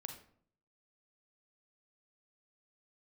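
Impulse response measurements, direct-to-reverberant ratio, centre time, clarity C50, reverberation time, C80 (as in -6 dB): 4.5 dB, 18 ms, 7.0 dB, 0.60 s, 11.5 dB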